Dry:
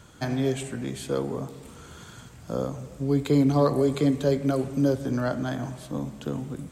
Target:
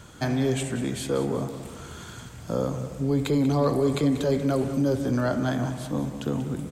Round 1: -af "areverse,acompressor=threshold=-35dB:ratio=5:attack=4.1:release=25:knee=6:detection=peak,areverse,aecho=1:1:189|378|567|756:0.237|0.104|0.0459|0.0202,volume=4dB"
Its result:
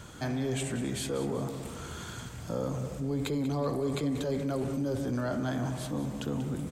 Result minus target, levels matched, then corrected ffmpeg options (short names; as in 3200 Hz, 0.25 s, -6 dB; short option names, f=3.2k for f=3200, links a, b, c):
compressor: peak gain reduction +8.5 dB
-af "areverse,acompressor=threshold=-24.5dB:ratio=5:attack=4.1:release=25:knee=6:detection=peak,areverse,aecho=1:1:189|378|567|756:0.237|0.104|0.0459|0.0202,volume=4dB"